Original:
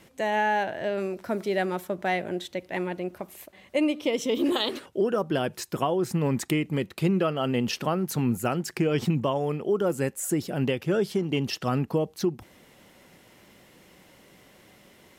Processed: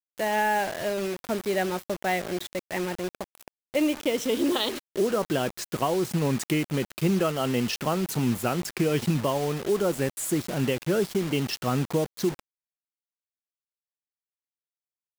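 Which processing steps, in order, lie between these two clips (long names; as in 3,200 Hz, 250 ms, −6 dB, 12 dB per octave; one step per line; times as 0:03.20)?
bit reduction 6 bits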